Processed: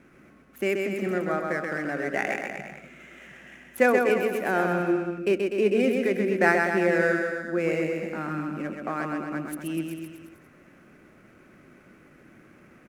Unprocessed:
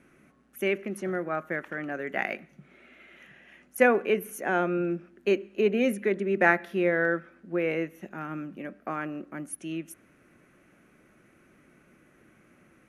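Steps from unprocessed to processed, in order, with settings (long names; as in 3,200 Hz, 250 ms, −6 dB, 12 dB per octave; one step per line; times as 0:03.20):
running median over 9 samples
in parallel at −1 dB: downward compressor, threshold −35 dBFS, peak gain reduction 18 dB
on the sum: bouncing-ball delay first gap 130 ms, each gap 0.9×, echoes 5
level −1 dB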